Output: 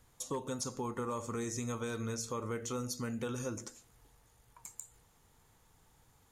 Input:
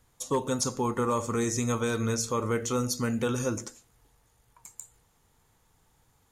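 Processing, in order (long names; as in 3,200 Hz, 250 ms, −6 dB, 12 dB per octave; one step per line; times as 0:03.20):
downward compressor 2 to 1, threshold −43 dBFS, peak gain reduction 11 dB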